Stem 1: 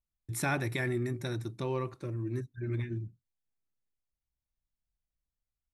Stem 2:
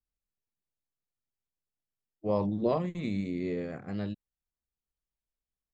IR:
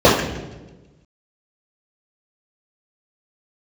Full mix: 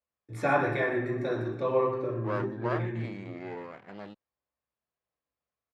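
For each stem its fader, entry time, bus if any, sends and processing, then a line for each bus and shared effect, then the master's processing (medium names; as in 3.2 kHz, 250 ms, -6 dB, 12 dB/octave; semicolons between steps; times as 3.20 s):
-1.0 dB, 0.00 s, send -18.5 dB, echo send -10.5 dB, none
+2.5 dB, 0.00 s, no send, no echo send, comb filter that takes the minimum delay 0.4 ms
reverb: on, RT60 1.2 s, pre-delay 3 ms
echo: delay 121 ms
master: band-pass filter 1.2 kHz, Q 0.83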